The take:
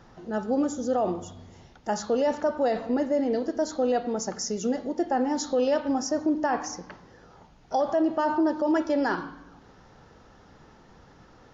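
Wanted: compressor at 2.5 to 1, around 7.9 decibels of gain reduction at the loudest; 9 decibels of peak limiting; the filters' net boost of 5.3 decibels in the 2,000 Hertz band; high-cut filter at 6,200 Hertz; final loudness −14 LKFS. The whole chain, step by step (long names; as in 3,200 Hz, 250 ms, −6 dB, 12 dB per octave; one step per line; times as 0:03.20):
low-pass filter 6,200 Hz
parametric band 2,000 Hz +7 dB
downward compressor 2.5 to 1, threshold −32 dBFS
level +23.5 dB
brickwall limiter −5 dBFS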